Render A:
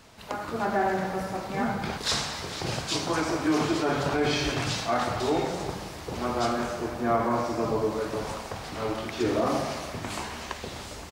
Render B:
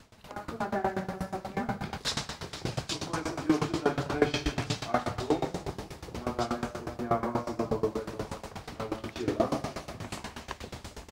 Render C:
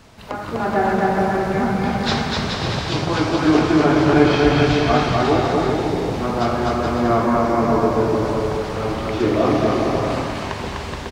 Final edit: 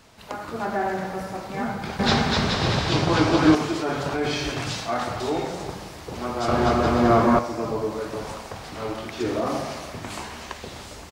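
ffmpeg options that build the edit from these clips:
-filter_complex "[2:a]asplit=2[a][b];[0:a]asplit=3[c][d][e];[c]atrim=end=1.992[f];[a]atrim=start=1.988:end=3.552[g];[d]atrim=start=3.548:end=6.482[h];[b]atrim=start=6.478:end=7.392[i];[e]atrim=start=7.388[j];[f][g]acrossfade=d=0.004:c1=hsin:c2=hsin[k];[k][h]acrossfade=d=0.004:c1=hsin:c2=hsin[l];[l][i]acrossfade=d=0.004:c1=hsin:c2=hsin[m];[m][j]acrossfade=d=0.004:c1=hsin:c2=hsin"

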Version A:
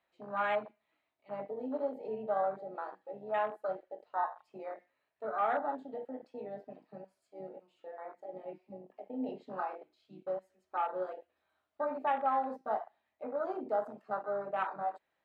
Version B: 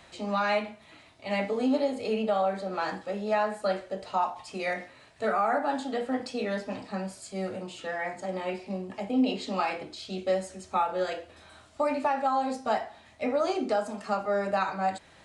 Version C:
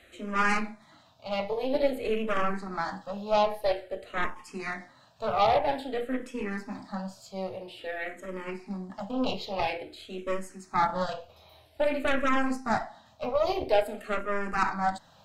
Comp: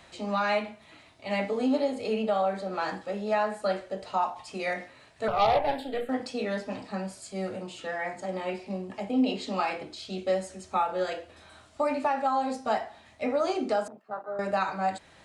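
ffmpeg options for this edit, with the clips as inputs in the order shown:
-filter_complex "[1:a]asplit=3[a][b][c];[a]atrim=end=5.282[d];[2:a]atrim=start=5.278:end=6.092[e];[b]atrim=start=6.088:end=13.882[f];[0:a]atrim=start=13.878:end=14.392[g];[c]atrim=start=14.388[h];[d][e]acrossfade=d=0.004:c1=hsin:c2=hsin[i];[i][f]acrossfade=d=0.004:c1=hsin:c2=hsin[j];[j][g]acrossfade=d=0.004:c1=hsin:c2=hsin[k];[k][h]acrossfade=d=0.004:c1=hsin:c2=hsin"

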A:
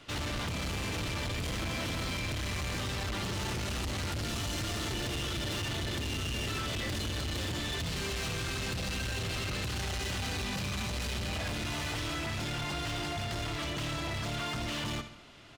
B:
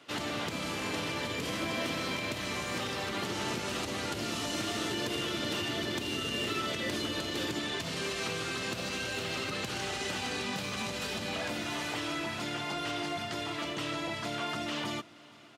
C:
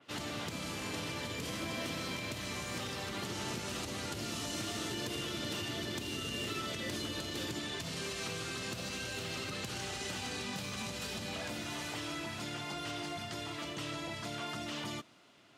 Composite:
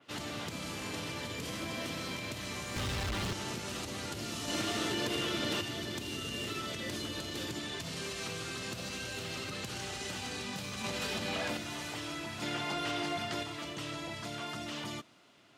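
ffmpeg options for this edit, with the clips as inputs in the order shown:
-filter_complex "[1:a]asplit=3[a][b][c];[2:a]asplit=5[d][e][f][g][h];[d]atrim=end=2.762[i];[0:a]atrim=start=2.758:end=3.332[j];[e]atrim=start=3.328:end=4.482[k];[a]atrim=start=4.478:end=5.612[l];[f]atrim=start=5.608:end=10.842[m];[b]atrim=start=10.838:end=11.572[n];[g]atrim=start=11.568:end=12.422[o];[c]atrim=start=12.418:end=13.432[p];[h]atrim=start=13.428[q];[i][j]acrossfade=d=0.004:c1=hsin:c2=hsin[r];[r][k]acrossfade=d=0.004:c1=hsin:c2=hsin[s];[s][l]acrossfade=d=0.004:c1=hsin:c2=hsin[t];[t][m]acrossfade=d=0.004:c1=hsin:c2=hsin[u];[u][n]acrossfade=d=0.004:c1=hsin:c2=hsin[v];[v][o]acrossfade=d=0.004:c1=hsin:c2=hsin[w];[w][p]acrossfade=d=0.004:c1=hsin:c2=hsin[x];[x][q]acrossfade=d=0.004:c1=hsin:c2=hsin"

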